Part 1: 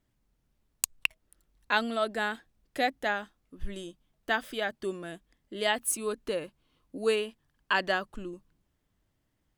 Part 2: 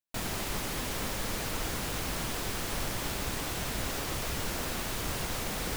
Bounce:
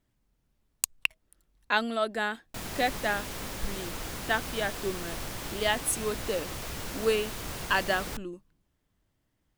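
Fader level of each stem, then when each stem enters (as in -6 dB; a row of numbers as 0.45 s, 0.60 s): +0.5 dB, -3.5 dB; 0.00 s, 2.40 s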